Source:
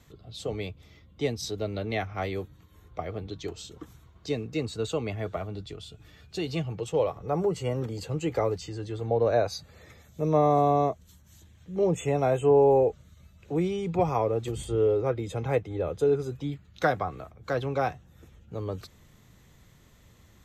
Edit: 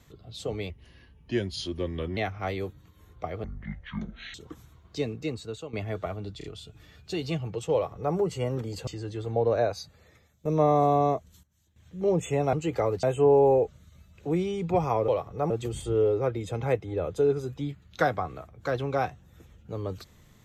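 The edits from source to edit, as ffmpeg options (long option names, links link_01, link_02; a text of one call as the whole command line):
ffmpeg -i in.wav -filter_complex "[0:a]asplit=16[link_01][link_02][link_03][link_04][link_05][link_06][link_07][link_08][link_09][link_10][link_11][link_12][link_13][link_14][link_15][link_16];[link_01]atrim=end=0.704[link_17];[link_02]atrim=start=0.7:end=1.92,asetpts=PTS-STARTPTS,asetrate=36603,aresample=44100[link_18];[link_03]atrim=start=1.916:end=3.194[link_19];[link_04]atrim=start=3.19:end=3.65,asetpts=PTS-STARTPTS,asetrate=22491,aresample=44100,atrim=end_sample=39776,asetpts=PTS-STARTPTS[link_20];[link_05]atrim=start=3.646:end=5.04,asetpts=PTS-STARTPTS,afade=type=out:start_time=0.784:duration=0.61:silence=0.199526[link_21];[link_06]atrim=start=5.04:end=5.722,asetpts=PTS-STARTPTS,afade=type=in:duration=0.004:curve=hsin:silence=0.199526[link_22];[link_07]atrim=start=5.688:end=5.722[link_23];[link_08]atrim=start=5.688:end=8.122[link_24];[link_09]atrim=start=8.618:end=10.2,asetpts=PTS-STARTPTS,afade=type=out:start_time=0.562:duration=1.02:silence=0.16788[link_25];[link_10]atrim=start=10.2:end=11.18,asetpts=PTS-STARTPTS,afade=type=in:duration=0.004:curve=hsin:silence=0.16788,afade=type=out:start_time=0.71:duration=0.27:curve=log:silence=0.16788[link_26];[link_11]atrim=start=11.18:end=11.51,asetpts=PTS-STARTPTS,volume=-15.5dB[link_27];[link_12]atrim=start=11.51:end=12.282,asetpts=PTS-STARTPTS,afade=type=in:duration=0.27:curve=log:silence=0.16788[link_28];[link_13]atrim=start=8.118:end=8.622[link_29];[link_14]atrim=start=12.278:end=14.332[link_30];[link_15]atrim=start=6.978:end=7.402[link_31];[link_16]atrim=start=14.328[link_32];[link_17][link_18]acrossfade=duration=0.004:curve1=hsin:curve2=hsin[link_33];[link_33][link_19]acrossfade=duration=0.004:curve1=hsin:curve2=hsin[link_34];[link_34][link_20]acrossfade=duration=0.004:curve1=hsin:curve2=hsin[link_35];[link_21][link_22]concat=n=2:v=0:a=1[link_36];[link_35][link_36]acrossfade=duration=0.004:curve1=hsin:curve2=hsin[link_37];[link_37][link_23]acrossfade=duration=0.004:curve1=hsin:curve2=hsin[link_38];[link_38][link_24]acrossfade=duration=0.004:curve1=hsin:curve2=hsin[link_39];[link_25][link_26][link_27][link_28]concat=n=4:v=0:a=1[link_40];[link_39][link_40]acrossfade=duration=0.004:curve1=hsin:curve2=hsin[link_41];[link_41][link_29]acrossfade=duration=0.004:curve1=hsin:curve2=hsin[link_42];[link_42][link_30]acrossfade=duration=0.004:curve1=hsin:curve2=hsin[link_43];[link_43][link_31]acrossfade=duration=0.004:curve1=hsin:curve2=hsin[link_44];[link_44][link_32]acrossfade=duration=0.004:curve1=hsin:curve2=hsin" out.wav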